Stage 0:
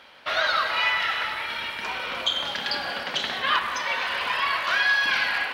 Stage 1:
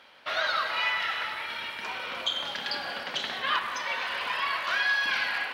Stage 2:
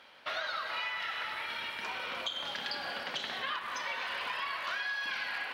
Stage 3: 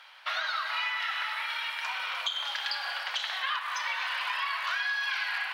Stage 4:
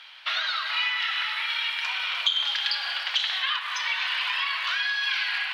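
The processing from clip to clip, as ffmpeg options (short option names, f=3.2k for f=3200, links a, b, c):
-af "lowshelf=f=61:g=-11,volume=-4.5dB"
-af "acompressor=threshold=-31dB:ratio=6,volume=-2dB"
-af "highpass=f=810:w=0.5412,highpass=f=810:w=1.3066,volume=5dB"
-af "equalizer=f=3.3k:t=o:w=1.9:g=12,volume=-3.5dB"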